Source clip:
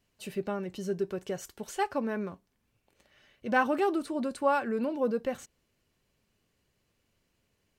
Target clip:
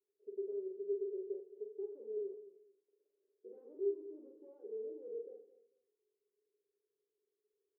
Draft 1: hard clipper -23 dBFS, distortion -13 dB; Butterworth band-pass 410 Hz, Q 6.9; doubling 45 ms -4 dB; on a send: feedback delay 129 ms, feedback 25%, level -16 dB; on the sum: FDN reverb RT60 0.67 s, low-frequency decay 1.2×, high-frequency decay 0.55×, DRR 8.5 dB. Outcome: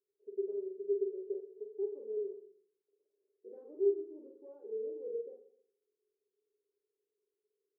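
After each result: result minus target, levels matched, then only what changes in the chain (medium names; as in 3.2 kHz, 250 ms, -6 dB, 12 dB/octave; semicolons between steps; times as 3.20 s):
echo 94 ms early; hard clipper: distortion -8 dB
change: feedback delay 223 ms, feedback 25%, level -16 dB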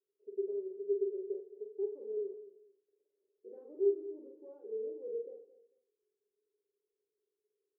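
hard clipper: distortion -8 dB
change: hard clipper -31.5 dBFS, distortion -6 dB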